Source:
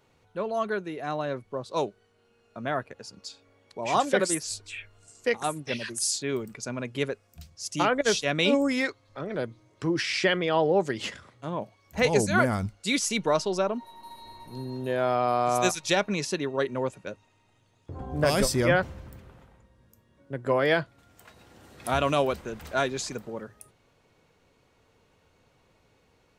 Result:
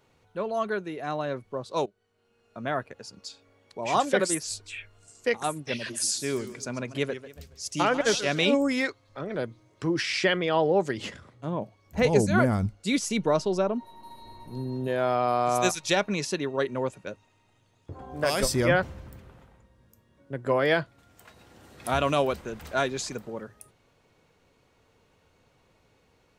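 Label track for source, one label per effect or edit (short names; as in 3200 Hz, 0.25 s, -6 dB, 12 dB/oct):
1.860000	2.620000	fade in, from -14.5 dB
5.720000	8.450000	warbling echo 0.139 s, feedback 37%, depth 159 cents, level -13 dB
10.970000	14.880000	tilt shelf lows +4 dB, about 660 Hz
17.930000	18.430000	low shelf 280 Hz -11.5 dB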